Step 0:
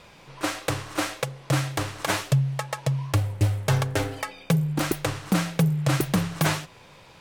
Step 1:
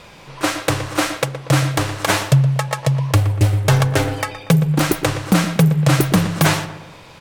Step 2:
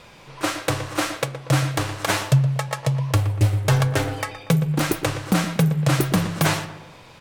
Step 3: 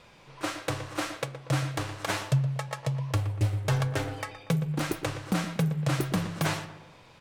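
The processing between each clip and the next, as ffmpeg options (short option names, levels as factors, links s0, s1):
-filter_complex "[0:a]asplit=2[s0][s1];[s1]adelay=119,lowpass=f=2100:p=1,volume=0.282,asplit=2[s2][s3];[s3]adelay=119,lowpass=f=2100:p=1,volume=0.48,asplit=2[s4][s5];[s5]adelay=119,lowpass=f=2100:p=1,volume=0.48,asplit=2[s6][s7];[s7]adelay=119,lowpass=f=2100:p=1,volume=0.48,asplit=2[s8][s9];[s9]adelay=119,lowpass=f=2100:p=1,volume=0.48[s10];[s0][s2][s4][s6][s8][s10]amix=inputs=6:normalize=0,volume=2.51"
-af "flanger=delay=7.9:depth=1.1:regen=80:speed=1.3:shape=sinusoidal"
-af "highshelf=f=11000:g=-6.5,volume=0.398"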